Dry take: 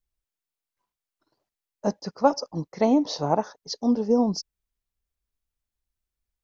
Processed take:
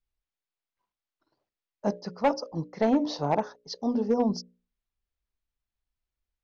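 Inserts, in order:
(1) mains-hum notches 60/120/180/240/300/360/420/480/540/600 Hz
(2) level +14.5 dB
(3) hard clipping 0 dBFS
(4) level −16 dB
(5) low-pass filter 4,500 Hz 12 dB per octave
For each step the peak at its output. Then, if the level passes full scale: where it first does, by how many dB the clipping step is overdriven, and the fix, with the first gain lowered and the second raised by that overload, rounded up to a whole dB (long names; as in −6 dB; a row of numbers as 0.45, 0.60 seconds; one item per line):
−7.0, +7.5, 0.0, −16.0, −15.5 dBFS
step 2, 7.5 dB
step 2 +6.5 dB, step 4 −8 dB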